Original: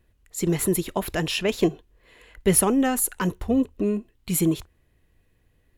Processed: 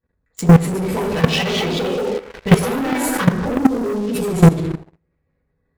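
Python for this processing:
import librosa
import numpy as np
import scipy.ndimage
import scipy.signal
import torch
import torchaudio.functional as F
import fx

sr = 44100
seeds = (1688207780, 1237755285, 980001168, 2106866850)

p1 = fx.wiener(x, sr, points=15)
p2 = fx.echo_pitch(p1, sr, ms=342, semitones=2, count=2, db_per_echo=-3.0)
p3 = fx.rider(p2, sr, range_db=10, speed_s=0.5)
p4 = p2 + F.gain(torch.from_numpy(p3), -2.0).numpy()
p5 = scipy.signal.sosfilt(scipy.signal.butter(2, 3900.0, 'lowpass', fs=sr, output='sos'), p4)
p6 = fx.low_shelf(p5, sr, hz=75.0, db=-5.5)
p7 = fx.rev_fdn(p6, sr, rt60_s=0.77, lf_ratio=0.95, hf_ratio=0.6, size_ms=36.0, drr_db=-6.0)
p8 = fx.leveller(p7, sr, passes=3)
p9 = fx.level_steps(p8, sr, step_db=16)
p10 = fx.high_shelf(p9, sr, hz=2300.0, db=10.5)
p11 = p10 + fx.echo_single(p10, sr, ms=79, db=-23.0, dry=0)
y = F.gain(torch.from_numpy(p11), -5.0).numpy()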